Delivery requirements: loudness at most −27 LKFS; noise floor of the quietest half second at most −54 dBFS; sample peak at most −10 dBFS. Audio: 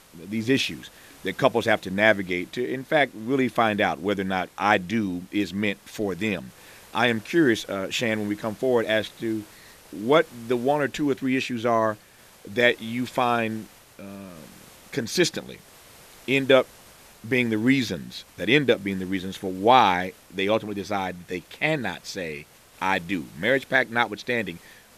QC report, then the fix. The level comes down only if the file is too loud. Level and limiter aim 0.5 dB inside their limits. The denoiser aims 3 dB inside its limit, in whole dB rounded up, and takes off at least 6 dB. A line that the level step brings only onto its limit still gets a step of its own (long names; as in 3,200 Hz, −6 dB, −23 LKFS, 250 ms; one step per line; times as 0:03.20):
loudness −24.5 LKFS: out of spec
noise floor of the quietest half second −51 dBFS: out of spec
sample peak −3.5 dBFS: out of spec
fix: broadband denoise 6 dB, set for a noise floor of −51 dBFS
level −3 dB
brickwall limiter −10.5 dBFS